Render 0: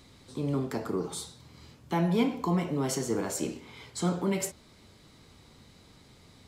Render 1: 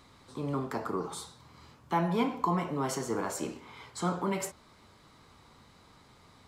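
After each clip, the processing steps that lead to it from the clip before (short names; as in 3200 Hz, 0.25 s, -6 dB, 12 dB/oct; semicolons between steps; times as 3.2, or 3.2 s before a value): bell 1100 Hz +10.5 dB 1.3 oct; gain -4.5 dB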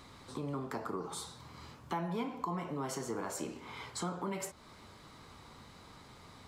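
compressor 2.5:1, threshold -43 dBFS, peak gain reduction 13 dB; gain +3.5 dB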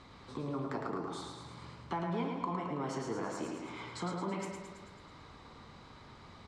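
air absorption 100 m; feedback echo 0.109 s, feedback 59%, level -5 dB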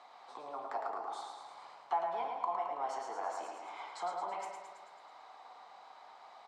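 resonant high-pass 740 Hz, resonance Q 5.9; gain -5 dB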